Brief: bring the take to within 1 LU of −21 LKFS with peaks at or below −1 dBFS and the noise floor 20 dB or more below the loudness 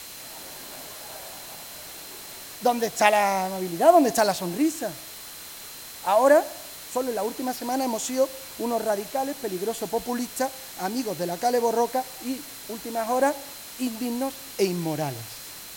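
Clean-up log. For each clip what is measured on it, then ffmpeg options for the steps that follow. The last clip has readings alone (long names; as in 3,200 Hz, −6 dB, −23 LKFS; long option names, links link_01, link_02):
interfering tone 4,100 Hz; level of the tone −49 dBFS; background noise floor −41 dBFS; target noise floor −45 dBFS; integrated loudness −25.0 LKFS; sample peak −3.0 dBFS; target loudness −21.0 LKFS
→ -af "bandreject=frequency=4100:width=30"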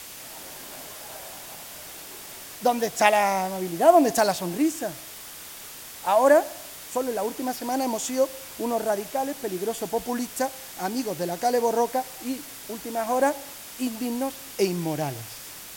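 interfering tone none found; background noise floor −41 dBFS; target noise floor −45 dBFS
→ -af "afftdn=noise_reduction=6:noise_floor=-41"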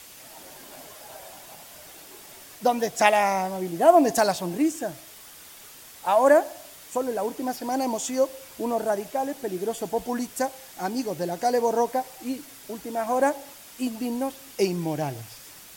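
background noise floor −47 dBFS; integrated loudness −25.0 LKFS; sample peak −3.0 dBFS; target loudness −21.0 LKFS
→ -af "volume=4dB,alimiter=limit=-1dB:level=0:latency=1"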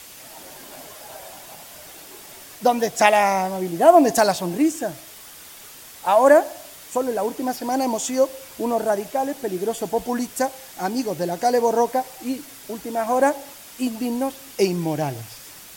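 integrated loudness −21.5 LKFS; sample peak −1.0 dBFS; background noise floor −43 dBFS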